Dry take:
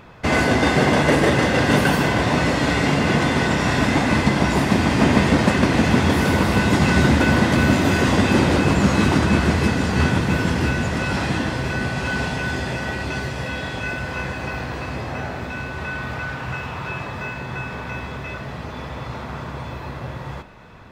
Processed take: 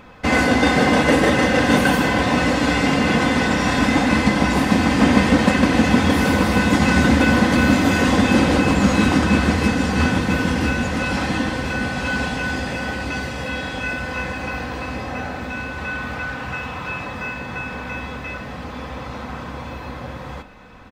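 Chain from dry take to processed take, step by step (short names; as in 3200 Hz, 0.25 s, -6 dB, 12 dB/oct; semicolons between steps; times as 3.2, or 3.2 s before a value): comb 3.9 ms, depth 48%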